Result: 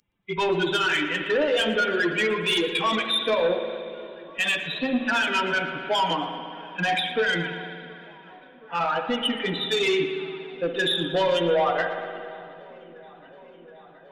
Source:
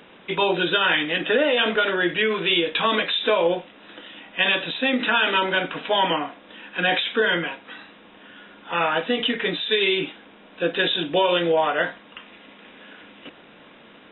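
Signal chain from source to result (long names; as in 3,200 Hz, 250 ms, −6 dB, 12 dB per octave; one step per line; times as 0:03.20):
spectral dynamics exaggerated over time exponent 2
0:04.64–0:05.07: treble cut that deepens with the level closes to 450 Hz, closed at −21 dBFS
in parallel at +0.5 dB: brickwall limiter −21 dBFS, peak gain reduction 9 dB
on the sum: soft clipping −18 dBFS, distortion −14 dB
on a send: delay with a low-pass on its return 722 ms, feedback 80%, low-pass 1,800 Hz, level −23.5 dB
on the sum: spring reverb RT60 2.4 s, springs 58 ms, chirp 70 ms, DRR 6 dB
feedback echo with a swinging delay time 115 ms, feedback 35%, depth 159 cents, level −19 dB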